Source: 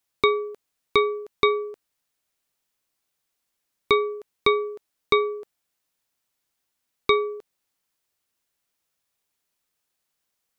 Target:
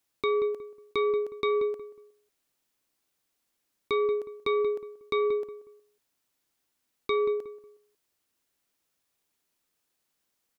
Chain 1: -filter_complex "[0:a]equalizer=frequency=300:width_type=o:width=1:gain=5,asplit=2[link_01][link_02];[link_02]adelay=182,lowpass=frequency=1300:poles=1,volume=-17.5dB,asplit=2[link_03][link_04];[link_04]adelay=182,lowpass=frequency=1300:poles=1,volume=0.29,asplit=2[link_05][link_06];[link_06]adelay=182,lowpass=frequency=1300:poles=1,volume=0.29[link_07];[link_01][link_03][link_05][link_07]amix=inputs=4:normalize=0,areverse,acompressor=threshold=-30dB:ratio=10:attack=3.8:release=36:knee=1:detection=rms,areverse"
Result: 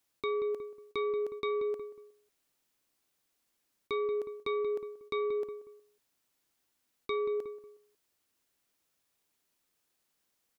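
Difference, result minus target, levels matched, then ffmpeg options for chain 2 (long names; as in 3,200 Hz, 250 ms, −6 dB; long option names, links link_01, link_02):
downward compressor: peak gain reduction +6.5 dB
-filter_complex "[0:a]equalizer=frequency=300:width_type=o:width=1:gain=5,asplit=2[link_01][link_02];[link_02]adelay=182,lowpass=frequency=1300:poles=1,volume=-17.5dB,asplit=2[link_03][link_04];[link_04]adelay=182,lowpass=frequency=1300:poles=1,volume=0.29,asplit=2[link_05][link_06];[link_06]adelay=182,lowpass=frequency=1300:poles=1,volume=0.29[link_07];[link_01][link_03][link_05][link_07]amix=inputs=4:normalize=0,areverse,acompressor=threshold=-23dB:ratio=10:attack=3.8:release=36:knee=1:detection=rms,areverse"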